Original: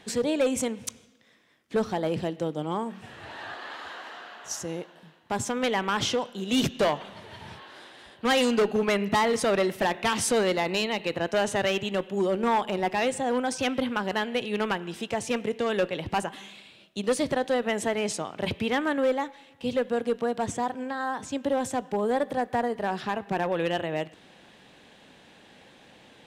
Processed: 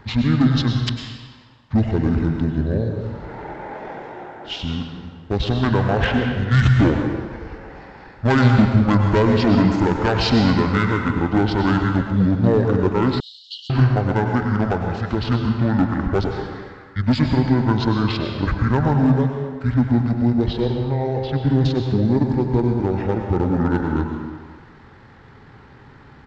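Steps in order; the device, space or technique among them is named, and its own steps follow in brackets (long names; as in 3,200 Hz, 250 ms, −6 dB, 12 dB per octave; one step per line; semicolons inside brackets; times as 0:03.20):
monster voice (pitch shifter −12 semitones; low-shelf EQ 110 Hz +9 dB; convolution reverb RT60 1.6 s, pre-delay 93 ms, DRR 3 dB)
0:13.20–0:13.70: Chebyshev high-pass filter 2,900 Hz, order 10
level +5.5 dB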